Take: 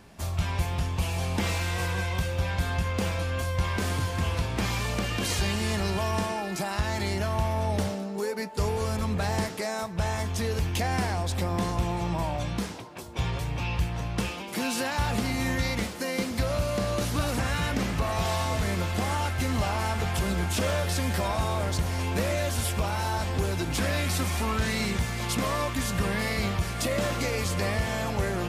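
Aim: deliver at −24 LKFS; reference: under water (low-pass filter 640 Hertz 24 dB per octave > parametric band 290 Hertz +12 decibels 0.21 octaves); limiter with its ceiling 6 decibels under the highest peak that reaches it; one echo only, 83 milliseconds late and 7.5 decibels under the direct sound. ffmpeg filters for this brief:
ffmpeg -i in.wav -af "alimiter=limit=-22.5dB:level=0:latency=1,lowpass=frequency=640:width=0.5412,lowpass=frequency=640:width=1.3066,equalizer=frequency=290:width_type=o:width=0.21:gain=12,aecho=1:1:83:0.422,volume=8.5dB" out.wav

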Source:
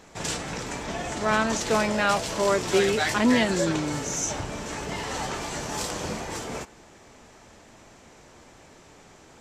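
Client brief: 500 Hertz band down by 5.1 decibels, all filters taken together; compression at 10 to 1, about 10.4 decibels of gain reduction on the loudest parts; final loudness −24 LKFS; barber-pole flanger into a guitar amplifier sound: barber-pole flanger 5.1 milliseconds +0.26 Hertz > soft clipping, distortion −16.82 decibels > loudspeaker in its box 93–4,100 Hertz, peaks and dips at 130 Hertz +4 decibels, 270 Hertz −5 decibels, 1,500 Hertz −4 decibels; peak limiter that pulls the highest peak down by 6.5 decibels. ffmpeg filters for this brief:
ffmpeg -i in.wav -filter_complex "[0:a]equalizer=frequency=500:width_type=o:gain=-6.5,acompressor=threshold=-28dB:ratio=10,alimiter=level_in=0.5dB:limit=-24dB:level=0:latency=1,volume=-0.5dB,asplit=2[link_01][link_02];[link_02]adelay=5.1,afreqshift=0.26[link_03];[link_01][link_03]amix=inputs=2:normalize=1,asoftclip=threshold=-32dB,highpass=93,equalizer=frequency=130:width_type=q:width=4:gain=4,equalizer=frequency=270:width_type=q:width=4:gain=-5,equalizer=frequency=1500:width_type=q:width=4:gain=-4,lowpass=frequency=4100:width=0.5412,lowpass=frequency=4100:width=1.3066,volume=17dB" out.wav

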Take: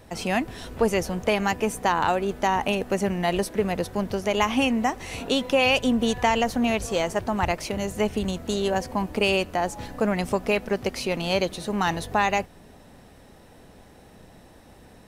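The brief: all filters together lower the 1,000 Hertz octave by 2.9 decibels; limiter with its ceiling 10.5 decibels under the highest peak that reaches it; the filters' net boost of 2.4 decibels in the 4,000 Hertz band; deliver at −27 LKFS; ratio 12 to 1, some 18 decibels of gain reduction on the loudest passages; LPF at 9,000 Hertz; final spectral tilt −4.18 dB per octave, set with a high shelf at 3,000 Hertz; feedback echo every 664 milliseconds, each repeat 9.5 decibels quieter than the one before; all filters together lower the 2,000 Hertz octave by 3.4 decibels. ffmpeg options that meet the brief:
ffmpeg -i in.wav -af "lowpass=9000,equalizer=frequency=1000:width_type=o:gain=-3,equalizer=frequency=2000:width_type=o:gain=-8,highshelf=frequency=3000:gain=4.5,equalizer=frequency=4000:width_type=o:gain=4,acompressor=threshold=-36dB:ratio=12,alimiter=level_in=8dB:limit=-24dB:level=0:latency=1,volume=-8dB,aecho=1:1:664|1328|1992|2656:0.335|0.111|0.0365|0.012,volume=15.5dB" out.wav

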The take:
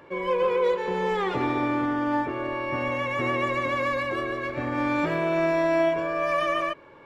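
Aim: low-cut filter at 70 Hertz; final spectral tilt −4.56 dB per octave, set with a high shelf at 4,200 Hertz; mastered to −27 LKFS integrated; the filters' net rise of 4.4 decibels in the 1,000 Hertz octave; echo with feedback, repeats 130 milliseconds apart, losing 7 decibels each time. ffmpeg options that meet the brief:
ffmpeg -i in.wav -af "highpass=70,equalizer=frequency=1000:width_type=o:gain=5.5,highshelf=frequency=4200:gain=-5,aecho=1:1:130|260|390|520|650:0.447|0.201|0.0905|0.0407|0.0183,volume=-4.5dB" out.wav

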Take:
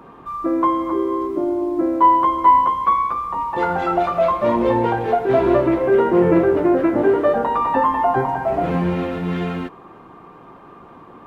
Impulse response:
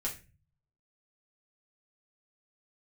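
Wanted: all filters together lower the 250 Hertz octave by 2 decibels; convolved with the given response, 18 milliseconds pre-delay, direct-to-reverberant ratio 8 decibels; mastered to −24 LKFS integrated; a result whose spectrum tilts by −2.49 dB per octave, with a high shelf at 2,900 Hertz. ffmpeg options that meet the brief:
-filter_complex "[0:a]equalizer=frequency=250:width_type=o:gain=-3.5,highshelf=frequency=2900:gain=6,asplit=2[link_01][link_02];[1:a]atrim=start_sample=2205,adelay=18[link_03];[link_02][link_03]afir=irnorm=-1:irlink=0,volume=-10.5dB[link_04];[link_01][link_04]amix=inputs=2:normalize=0,volume=-6.5dB"

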